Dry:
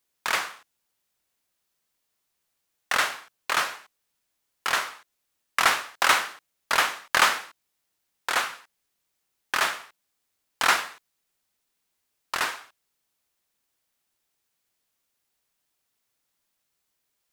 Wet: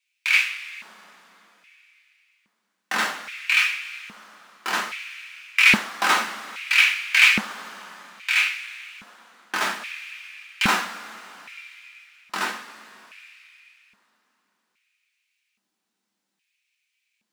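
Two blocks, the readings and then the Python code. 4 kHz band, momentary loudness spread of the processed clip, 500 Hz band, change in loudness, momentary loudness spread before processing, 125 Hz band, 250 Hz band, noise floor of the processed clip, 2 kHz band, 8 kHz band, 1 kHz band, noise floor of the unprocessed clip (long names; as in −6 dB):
+4.0 dB, 23 LU, −2.5 dB, +4.0 dB, 15 LU, +11.0 dB, +11.5 dB, −79 dBFS, +6.0 dB, −1.0 dB, −2.0 dB, −78 dBFS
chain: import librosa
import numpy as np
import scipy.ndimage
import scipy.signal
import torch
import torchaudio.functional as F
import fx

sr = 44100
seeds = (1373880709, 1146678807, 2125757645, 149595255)

y = scipy.signal.medfilt(x, 3)
y = fx.rev_double_slope(y, sr, seeds[0], early_s=0.3, late_s=3.5, knee_db=-19, drr_db=-1.5)
y = fx.filter_lfo_highpass(y, sr, shape='square', hz=0.61, low_hz=210.0, high_hz=2400.0, q=6.9)
y = y * librosa.db_to_amplitude(-3.5)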